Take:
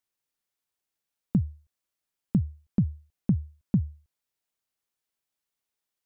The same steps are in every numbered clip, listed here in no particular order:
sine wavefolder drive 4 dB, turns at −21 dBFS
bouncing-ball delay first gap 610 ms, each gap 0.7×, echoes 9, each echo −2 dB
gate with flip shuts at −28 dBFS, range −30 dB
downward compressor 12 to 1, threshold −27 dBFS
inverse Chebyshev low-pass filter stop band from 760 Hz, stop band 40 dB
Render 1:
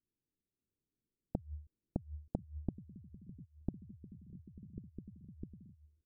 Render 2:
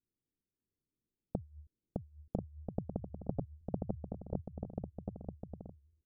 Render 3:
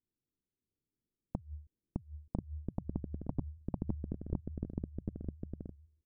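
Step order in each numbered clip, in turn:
bouncing-ball delay, then downward compressor, then gate with flip, then inverse Chebyshev low-pass filter, then sine wavefolder
gate with flip, then downward compressor, then inverse Chebyshev low-pass filter, then sine wavefolder, then bouncing-ball delay
inverse Chebyshev low-pass filter, then downward compressor, then gate with flip, then bouncing-ball delay, then sine wavefolder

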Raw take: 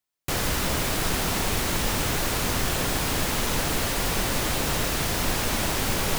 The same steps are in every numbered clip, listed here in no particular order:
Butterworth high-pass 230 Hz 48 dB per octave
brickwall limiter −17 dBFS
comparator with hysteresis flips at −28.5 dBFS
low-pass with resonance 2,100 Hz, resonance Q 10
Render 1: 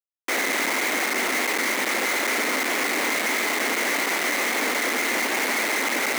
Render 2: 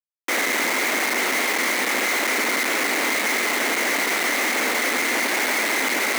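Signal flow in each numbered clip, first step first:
brickwall limiter, then low-pass with resonance, then comparator with hysteresis, then Butterworth high-pass
low-pass with resonance, then comparator with hysteresis, then brickwall limiter, then Butterworth high-pass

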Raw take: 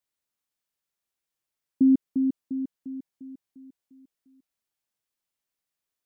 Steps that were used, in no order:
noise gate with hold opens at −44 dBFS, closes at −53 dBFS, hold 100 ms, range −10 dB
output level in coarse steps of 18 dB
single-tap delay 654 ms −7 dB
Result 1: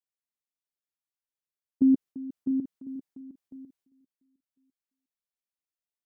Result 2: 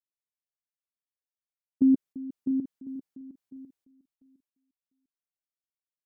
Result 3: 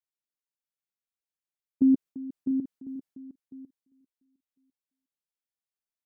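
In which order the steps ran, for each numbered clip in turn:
output level in coarse steps, then single-tap delay, then noise gate with hold
noise gate with hold, then output level in coarse steps, then single-tap delay
output level in coarse steps, then noise gate with hold, then single-tap delay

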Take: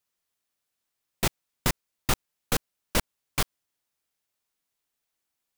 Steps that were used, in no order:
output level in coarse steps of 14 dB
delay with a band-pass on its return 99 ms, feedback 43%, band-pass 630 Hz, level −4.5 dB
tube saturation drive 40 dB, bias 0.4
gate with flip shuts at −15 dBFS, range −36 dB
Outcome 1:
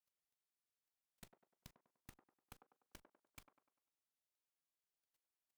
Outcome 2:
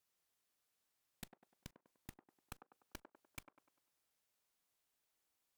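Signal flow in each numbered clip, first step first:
gate with flip, then tube saturation, then output level in coarse steps, then delay with a band-pass on its return
gate with flip, then output level in coarse steps, then tube saturation, then delay with a band-pass on its return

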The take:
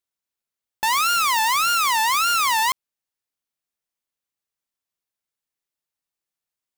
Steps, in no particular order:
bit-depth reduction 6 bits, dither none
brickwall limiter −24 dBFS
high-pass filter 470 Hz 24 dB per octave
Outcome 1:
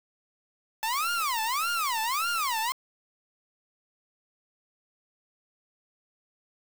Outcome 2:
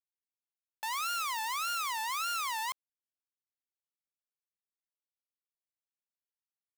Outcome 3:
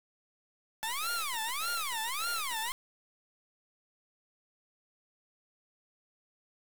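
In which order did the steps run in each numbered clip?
brickwall limiter, then high-pass filter, then bit-depth reduction
high-pass filter, then bit-depth reduction, then brickwall limiter
high-pass filter, then brickwall limiter, then bit-depth reduction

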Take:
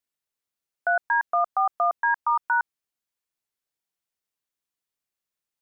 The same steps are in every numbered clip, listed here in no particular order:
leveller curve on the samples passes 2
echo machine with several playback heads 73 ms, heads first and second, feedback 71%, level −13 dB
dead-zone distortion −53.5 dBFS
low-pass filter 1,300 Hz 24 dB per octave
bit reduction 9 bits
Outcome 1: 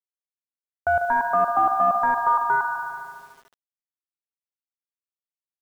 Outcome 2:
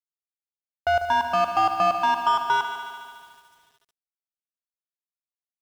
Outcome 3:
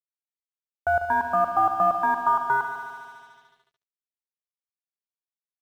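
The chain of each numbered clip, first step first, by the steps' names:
echo machine with several playback heads, then dead-zone distortion, then leveller curve on the samples, then low-pass filter, then bit reduction
low-pass filter, then leveller curve on the samples, then echo machine with several playback heads, then bit reduction, then dead-zone distortion
leveller curve on the samples, then low-pass filter, then bit reduction, then echo machine with several playback heads, then dead-zone distortion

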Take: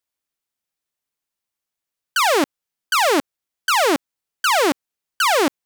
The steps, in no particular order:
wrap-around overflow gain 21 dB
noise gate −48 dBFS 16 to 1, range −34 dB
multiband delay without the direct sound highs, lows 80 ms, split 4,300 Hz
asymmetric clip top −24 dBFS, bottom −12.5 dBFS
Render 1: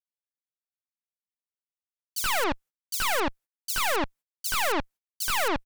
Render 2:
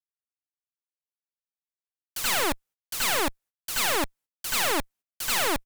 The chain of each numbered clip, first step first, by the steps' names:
asymmetric clip, then wrap-around overflow, then multiband delay without the direct sound, then noise gate
asymmetric clip, then multiband delay without the direct sound, then noise gate, then wrap-around overflow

